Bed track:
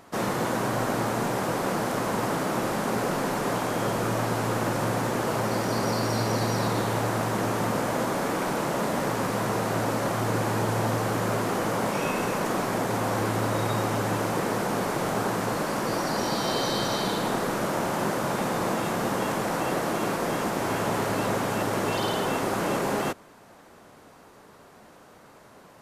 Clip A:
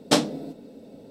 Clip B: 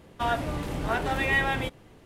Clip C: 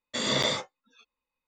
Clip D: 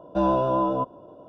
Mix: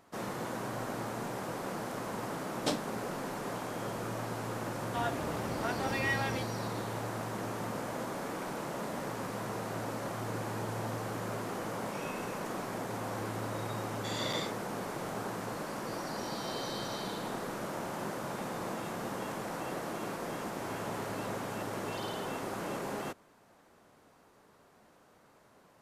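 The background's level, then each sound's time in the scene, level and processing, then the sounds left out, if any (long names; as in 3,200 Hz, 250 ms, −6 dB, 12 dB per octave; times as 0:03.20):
bed track −11 dB
0:02.55: mix in A −13 dB
0:04.74: mix in B −8 dB + high-pass filter 86 Hz
0:13.90: mix in C −10.5 dB
not used: D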